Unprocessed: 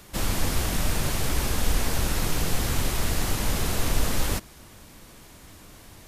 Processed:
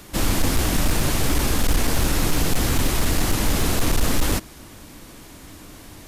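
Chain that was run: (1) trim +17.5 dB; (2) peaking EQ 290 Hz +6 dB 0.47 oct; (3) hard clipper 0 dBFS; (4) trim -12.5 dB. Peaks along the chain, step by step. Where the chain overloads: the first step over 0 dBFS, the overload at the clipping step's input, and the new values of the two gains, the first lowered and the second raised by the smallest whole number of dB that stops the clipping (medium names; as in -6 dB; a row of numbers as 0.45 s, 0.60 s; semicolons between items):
+7.5 dBFS, +8.0 dBFS, 0.0 dBFS, -12.5 dBFS; step 1, 8.0 dB; step 1 +9.5 dB, step 4 -4.5 dB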